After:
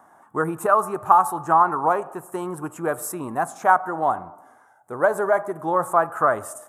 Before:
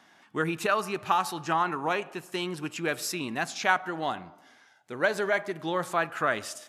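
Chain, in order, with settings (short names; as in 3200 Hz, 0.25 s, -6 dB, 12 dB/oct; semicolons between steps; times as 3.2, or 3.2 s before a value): EQ curve 100 Hz 0 dB, 200 Hz -6 dB, 350 Hz -3 dB, 820 Hz +4 dB, 1200 Hz +3 dB, 2500 Hz -23 dB, 4700 Hz -26 dB, 8600 Hz 0 dB; gain +7 dB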